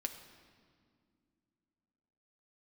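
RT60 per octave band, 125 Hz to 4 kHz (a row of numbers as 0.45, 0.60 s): 3.1, 3.4, 2.4, 2.0, 1.7, 1.5 s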